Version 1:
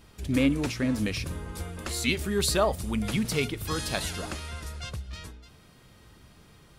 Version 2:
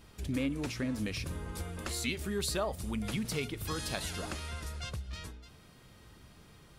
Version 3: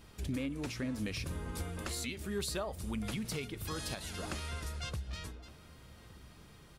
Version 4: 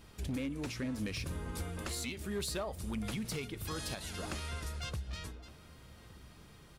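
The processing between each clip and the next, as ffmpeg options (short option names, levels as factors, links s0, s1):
-af "acompressor=threshold=0.0224:ratio=2,volume=0.794"
-filter_complex "[0:a]alimiter=level_in=1.41:limit=0.0631:level=0:latency=1:release=414,volume=0.708,asplit=2[s0][s1];[s1]adelay=1166,volume=0.126,highshelf=f=4000:g=-26.2[s2];[s0][s2]amix=inputs=2:normalize=0"
-af "volume=35.5,asoftclip=hard,volume=0.0282"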